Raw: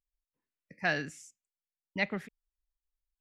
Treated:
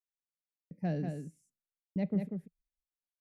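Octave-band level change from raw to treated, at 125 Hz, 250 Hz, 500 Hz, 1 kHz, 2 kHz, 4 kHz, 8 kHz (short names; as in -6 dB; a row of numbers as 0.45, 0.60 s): +8.5 dB, +6.5 dB, -2.0 dB, -8.5 dB, -22.0 dB, under -15 dB, under -10 dB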